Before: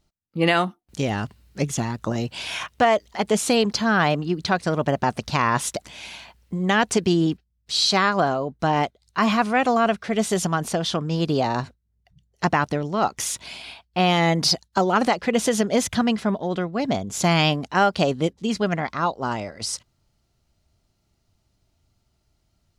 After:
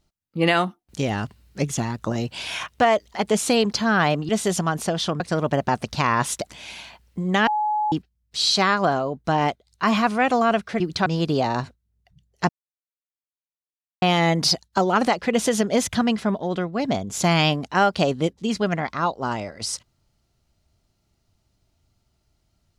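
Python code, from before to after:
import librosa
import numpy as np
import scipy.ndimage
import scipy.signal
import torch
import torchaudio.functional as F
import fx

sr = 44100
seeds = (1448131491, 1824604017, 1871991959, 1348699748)

y = fx.edit(x, sr, fx.swap(start_s=4.29, length_s=0.26, other_s=10.15, other_length_s=0.91),
    fx.bleep(start_s=6.82, length_s=0.45, hz=847.0, db=-19.5),
    fx.silence(start_s=12.49, length_s=1.53), tone=tone)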